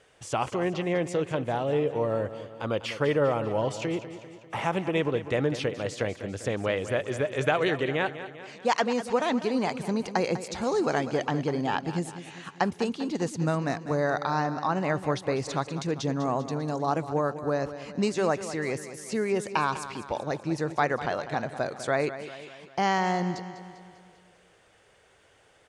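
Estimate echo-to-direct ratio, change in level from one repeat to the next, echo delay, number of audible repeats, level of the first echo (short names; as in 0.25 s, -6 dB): -11.0 dB, -5.5 dB, 0.198 s, 5, -12.5 dB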